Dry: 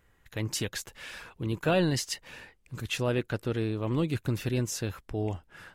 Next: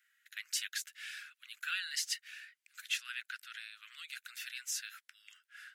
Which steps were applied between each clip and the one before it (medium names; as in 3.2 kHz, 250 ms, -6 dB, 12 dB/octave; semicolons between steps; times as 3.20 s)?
steep high-pass 1.4 kHz 72 dB/octave; trim -2 dB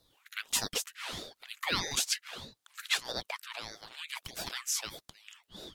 ring modulator with a swept carrier 1.1 kHz, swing 90%, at 1.6 Hz; trim +8.5 dB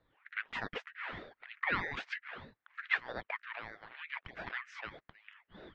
four-pole ladder low-pass 2.2 kHz, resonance 50%; trim +6.5 dB